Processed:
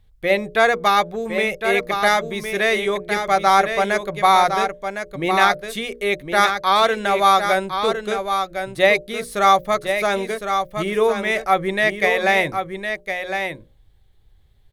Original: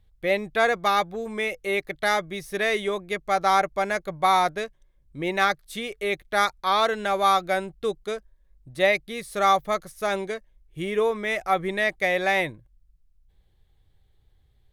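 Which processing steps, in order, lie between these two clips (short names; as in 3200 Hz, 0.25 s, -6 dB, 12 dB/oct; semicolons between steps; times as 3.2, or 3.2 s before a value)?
notches 60/120/180/240/300/360/420/480/540/600 Hz; echo 1.059 s -7 dB; gain +5.5 dB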